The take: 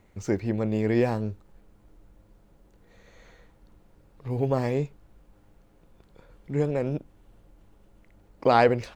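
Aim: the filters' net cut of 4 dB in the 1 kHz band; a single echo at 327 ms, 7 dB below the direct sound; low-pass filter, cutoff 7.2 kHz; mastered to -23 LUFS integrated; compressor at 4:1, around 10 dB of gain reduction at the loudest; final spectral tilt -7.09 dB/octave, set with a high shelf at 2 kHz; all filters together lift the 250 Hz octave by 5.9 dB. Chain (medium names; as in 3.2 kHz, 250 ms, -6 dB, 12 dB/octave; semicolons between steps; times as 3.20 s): low-pass 7.2 kHz; peaking EQ 250 Hz +7.5 dB; peaking EQ 1 kHz -7.5 dB; treble shelf 2 kHz +4 dB; compression 4:1, threshold -26 dBFS; delay 327 ms -7 dB; trim +8 dB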